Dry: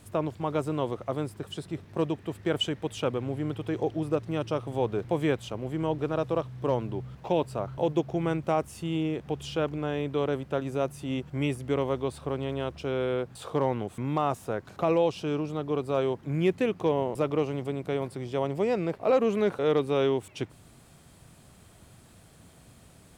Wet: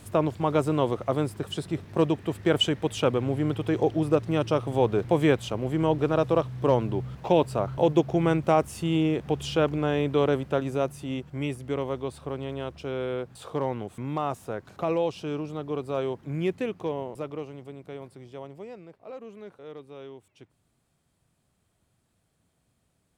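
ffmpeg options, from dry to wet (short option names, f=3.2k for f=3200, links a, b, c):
-af "volume=5dB,afade=t=out:st=10.27:d=0.99:silence=0.446684,afade=t=out:st=16.35:d=1.18:silence=0.398107,afade=t=out:st=18.21:d=0.65:silence=0.398107"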